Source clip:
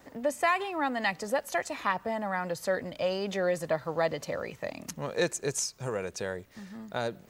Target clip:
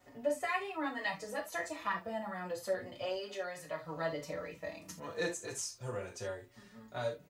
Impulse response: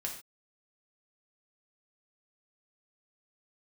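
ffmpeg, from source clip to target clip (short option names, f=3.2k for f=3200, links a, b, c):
-filter_complex "[0:a]asettb=1/sr,asplit=3[a][b][c];[a]atrim=end=3.164[d];[b]atrim=start=3.16:end=3.84,asetpts=PTS-STARTPTS,afade=t=in:d=0.004:c=qsin,afade=t=out:st=0.676:d=0.004:c=qsin,lowshelf=f=480:g=-8.5[e];[c]atrim=start=3.836[f];[d][e]acrossfade=d=0.004:c1=hsin:c2=qsin[g];[g][f]acrossfade=d=0.004:c1=qsin:c2=hsin[h];[1:a]atrim=start_sample=2205,asetrate=74970,aresample=44100[i];[h][i]afir=irnorm=-1:irlink=0,asplit=2[j][k];[k]adelay=5.1,afreqshift=0.31[l];[j][l]amix=inputs=2:normalize=1"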